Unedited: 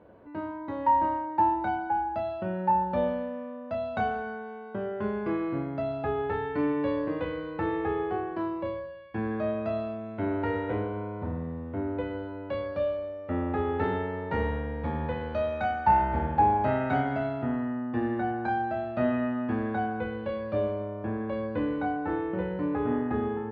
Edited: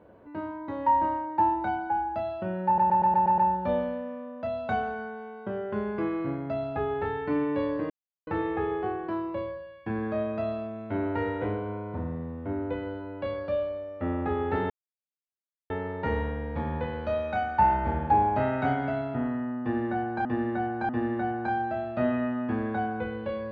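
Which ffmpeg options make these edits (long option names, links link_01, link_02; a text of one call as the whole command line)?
ffmpeg -i in.wav -filter_complex "[0:a]asplit=12[link_01][link_02][link_03][link_04][link_05][link_06][link_07][link_08][link_09][link_10][link_11][link_12];[link_01]atrim=end=2.782[link_13];[link_02]atrim=start=2.658:end=2.782[link_14];[link_03]atrim=start=2.658:end=2.782[link_15];[link_04]atrim=start=2.658:end=2.782[link_16];[link_05]atrim=start=2.658:end=2.782[link_17];[link_06]atrim=start=2.658:end=2.782[link_18];[link_07]atrim=start=2.658:end=7.18,asetpts=PTS-STARTPTS,afade=type=out:start_time=4.518:duration=0.004:curve=hsin[link_19];[link_08]atrim=start=7.18:end=7.55,asetpts=PTS-STARTPTS,volume=0[link_20];[link_09]atrim=start=7.55:end=13.98,asetpts=PTS-STARTPTS,afade=type=in:duration=0.004:curve=hsin,afade=type=out:start_time=6.426:duration=0.004:curve=hsin,apad=pad_dur=1[link_21];[link_10]atrim=start=13.98:end=18.532,asetpts=PTS-STARTPTS,afade=type=in:duration=0.004:curve=hsin[link_22];[link_11]atrim=start=17.888:end=18.532[link_23];[link_12]atrim=start=17.888[link_24];[link_13][link_14]acrossfade=duration=0.004:curve1=hsin:curve2=hsin[link_25];[link_25][link_15]acrossfade=duration=0.004:curve1=hsin:curve2=hsin[link_26];[link_26][link_16]acrossfade=duration=0.004:curve1=hsin:curve2=hsin[link_27];[link_27][link_17]acrossfade=duration=0.004:curve1=hsin:curve2=hsin[link_28];[link_28][link_18]acrossfade=duration=0.004:curve1=hsin:curve2=hsin[link_29];[link_19][link_20][link_21][link_22]concat=n=4:v=0:a=1[link_30];[link_29][link_30]acrossfade=duration=0.004:curve1=hsin:curve2=hsin[link_31];[link_31][link_23]acrossfade=duration=0.004:curve1=hsin:curve2=hsin[link_32];[link_32][link_24]acrossfade=duration=0.004:curve1=hsin:curve2=hsin" out.wav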